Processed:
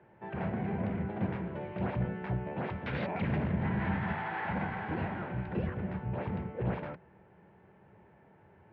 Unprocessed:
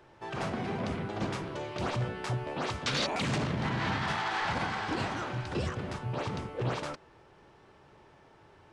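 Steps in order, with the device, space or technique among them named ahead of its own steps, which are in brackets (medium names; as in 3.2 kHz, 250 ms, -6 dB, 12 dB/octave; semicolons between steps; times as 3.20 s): sub-octave bass pedal (octave divider, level -3 dB; cabinet simulation 79–2200 Hz, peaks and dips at 80 Hz +4 dB, 190 Hz +9 dB, 280 Hz -4 dB, 1.2 kHz -9 dB); trim -2 dB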